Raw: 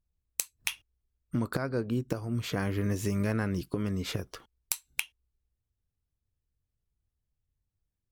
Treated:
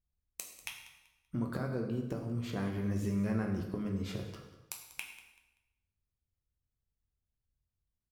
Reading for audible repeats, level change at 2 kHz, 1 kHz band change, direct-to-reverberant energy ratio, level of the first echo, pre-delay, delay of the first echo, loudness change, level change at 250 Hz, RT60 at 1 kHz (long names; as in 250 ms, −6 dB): 2, −8.0 dB, −5.5 dB, 2.0 dB, −17.0 dB, 5 ms, 192 ms, −4.5 dB, −2.5 dB, 1.0 s